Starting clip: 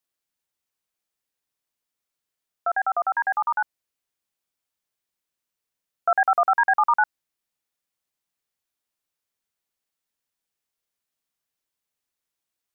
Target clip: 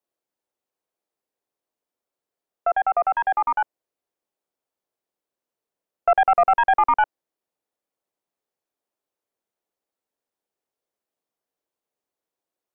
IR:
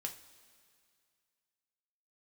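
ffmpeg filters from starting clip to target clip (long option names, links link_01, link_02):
-filter_complex "[0:a]equalizer=frequency=450:width=0.45:gain=11,acrossover=split=310|960[link_01][link_02][link_03];[link_02]acontrast=39[link_04];[link_03]aeval=exprs='0.335*(cos(1*acos(clip(val(0)/0.335,-1,1)))-cos(1*PI/2))+0.0841*(cos(2*acos(clip(val(0)/0.335,-1,1)))-cos(2*PI/2))':channel_layout=same[link_05];[link_01][link_04][link_05]amix=inputs=3:normalize=0,volume=-7.5dB"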